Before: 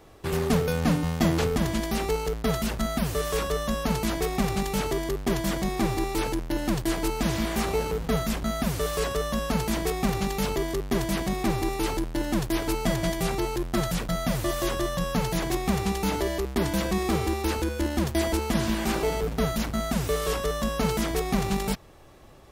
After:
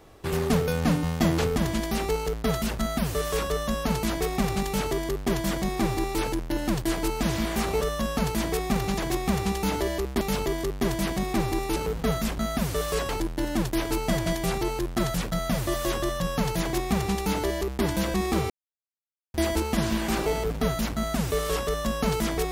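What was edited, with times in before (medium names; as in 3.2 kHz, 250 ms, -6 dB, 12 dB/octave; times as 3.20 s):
7.81–9.14 s: move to 11.86 s
15.38–16.61 s: copy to 10.31 s
17.27–18.11 s: mute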